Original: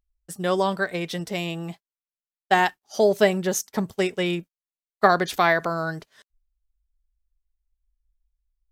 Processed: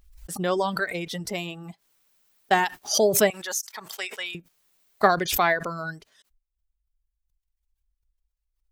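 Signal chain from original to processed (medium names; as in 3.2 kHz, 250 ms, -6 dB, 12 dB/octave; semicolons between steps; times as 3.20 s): reverb removal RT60 1.3 s; 3.30–4.35 s: high-pass 1.2 kHz 12 dB/octave; swell ahead of each attack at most 74 dB/s; trim -1.5 dB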